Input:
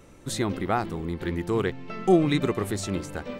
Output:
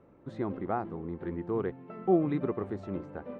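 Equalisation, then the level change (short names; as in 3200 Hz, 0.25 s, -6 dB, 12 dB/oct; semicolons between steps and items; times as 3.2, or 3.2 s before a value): HPF 160 Hz 6 dB/oct; LPF 1100 Hz 12 dB/oct; -4.5 dB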